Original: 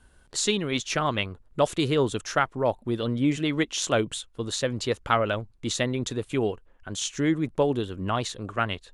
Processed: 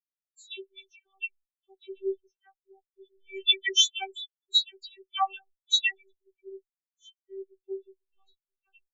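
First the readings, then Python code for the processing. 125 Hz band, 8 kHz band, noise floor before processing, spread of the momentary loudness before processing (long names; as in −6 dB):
below −40 dB, −4.0 dB, −58 dBFS, 7 LU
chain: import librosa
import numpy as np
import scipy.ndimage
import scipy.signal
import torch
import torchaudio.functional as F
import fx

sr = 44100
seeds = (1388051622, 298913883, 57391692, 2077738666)

y = fx.highpass(x, sr, hz=120.0, slope=6)
y = fx.spec_box(y, sr, start_s=3.15, length_s=2.88, low_hz=550.0, high_hz=8100.0, gain_db=8)
y = fx.high_shelf_res(y, sr, hz=1900.0, db=9.5, q=1.5)
y = fx.tremolo_shape(y, sr, shape='saw_down', hz=6.7, depth_pct=30)
y = fx.robotise(y, sr, hz=388.0)
y = fx.comb_fb(y, sr, f0_hz=190.0, decay_s=0.67, harmonics='all', damping=0.0, mix_pct=60)
y = fx.dispersion(y, sr, late='lows', ms=100.0, hz=2300.0)
y = fx.spectral_expand(y, sr, expansion=4.0)
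y = F.gain(torch.from_numpy(y), 1.5).numpy()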